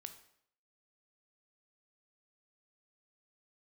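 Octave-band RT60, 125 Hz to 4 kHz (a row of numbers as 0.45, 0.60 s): 0.60, 0.65, 0.70, 0.65, 0.60, 0.60 s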